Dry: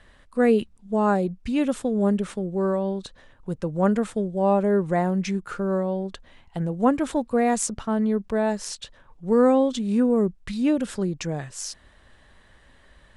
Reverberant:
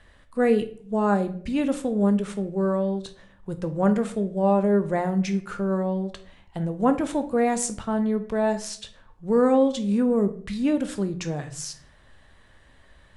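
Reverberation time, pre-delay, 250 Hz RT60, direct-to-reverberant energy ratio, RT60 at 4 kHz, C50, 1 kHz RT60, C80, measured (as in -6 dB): 0.55 s, 14 ms, 0.75 s, 8.0 dB, 0.40 s, 13.0 dB, 0.45 s, 18.0 dB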